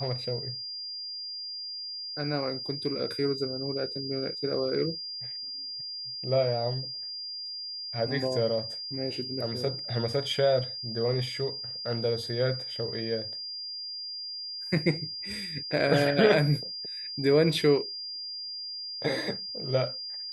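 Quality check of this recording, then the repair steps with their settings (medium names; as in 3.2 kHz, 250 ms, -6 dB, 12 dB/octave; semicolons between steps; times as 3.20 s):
whine 4.8 kHz -35 dBFS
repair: band-stop 4.8 kHz, Q 30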